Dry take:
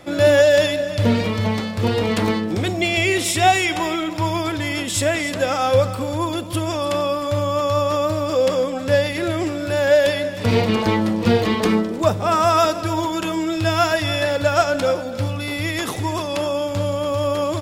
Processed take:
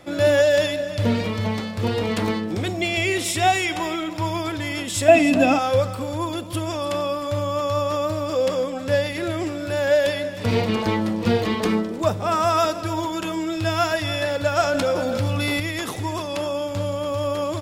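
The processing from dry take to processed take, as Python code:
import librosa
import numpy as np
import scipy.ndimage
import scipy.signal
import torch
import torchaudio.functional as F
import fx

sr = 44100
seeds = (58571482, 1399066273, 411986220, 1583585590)

y = fx.small_body(x, sr, hz=(260.0, 680.0, 2600.0), ring_ms=45, db=18, at=(5.08, 5.59))
y = fx.env_flatten(y, sr, amount_pct=70, at=(14.63, 15.6))
y = y * librosa.db_to_amplitude(-3.5)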